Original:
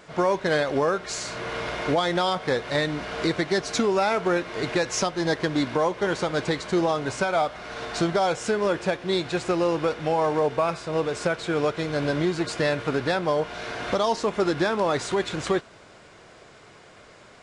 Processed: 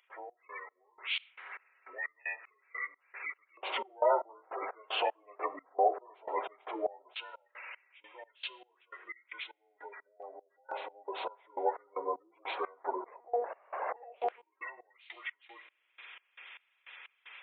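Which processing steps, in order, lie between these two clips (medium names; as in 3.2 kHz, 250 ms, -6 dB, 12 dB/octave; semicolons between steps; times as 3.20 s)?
frequency axis rescaled in octaves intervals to 77%; spectral gate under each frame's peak -20 dB strong; 10.22–11.09 s: comb 3.5 ms, depth 50%; reverberation RT60 1.6 s, pre-delay 3 ms, DRR 15 dB; 13.06–14.43 s: monotone LPC vocoder at 8 kHz 240 Hz; LFO high-pass square 0.14 Hz 730–2400 Hz; upward compressor, threshold -33 dBFS; resonant low shelf 270 Hz -11.5 dB, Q 1.5; trance gate ".xx..xx.." 153 bpm -24 dB; trim -6 dB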